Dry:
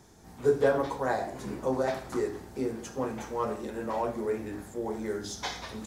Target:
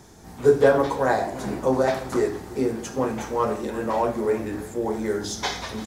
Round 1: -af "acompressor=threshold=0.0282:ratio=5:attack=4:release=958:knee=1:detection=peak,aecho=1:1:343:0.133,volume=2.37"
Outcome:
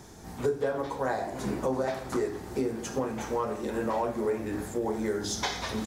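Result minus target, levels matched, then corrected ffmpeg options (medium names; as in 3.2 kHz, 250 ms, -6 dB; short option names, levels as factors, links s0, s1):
compression: peak gain reduction +14 dB
-af "aecho=1:1:343:0.133,volume=2.37"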